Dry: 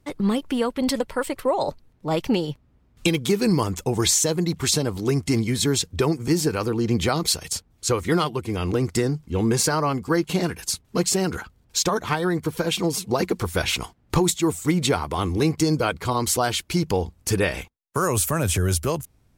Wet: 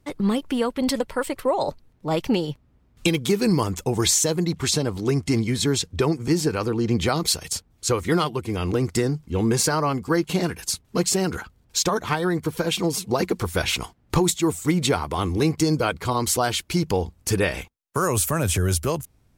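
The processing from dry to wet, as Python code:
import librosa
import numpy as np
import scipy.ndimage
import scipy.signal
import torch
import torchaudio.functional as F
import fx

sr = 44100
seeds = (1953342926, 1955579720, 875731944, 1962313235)

y = fx.high_shelf(x, sr, hz=11000.0, db=-8.5, at=(4.45, 7.06))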